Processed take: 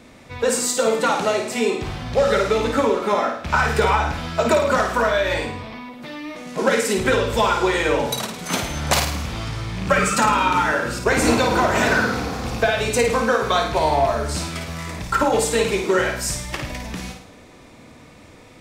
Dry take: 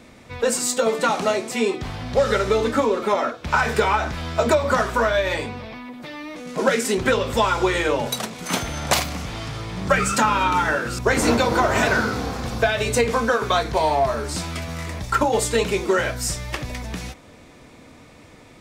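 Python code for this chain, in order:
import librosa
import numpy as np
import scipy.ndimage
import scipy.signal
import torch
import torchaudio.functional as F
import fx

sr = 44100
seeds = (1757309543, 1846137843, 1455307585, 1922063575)

y = fx.rattle_buzz(x, sr, strikes_db=-24.0, level_db=-24.0)
y = fx.room_flutter(y, sr, wall_m=9.2, rt60_s=0.56)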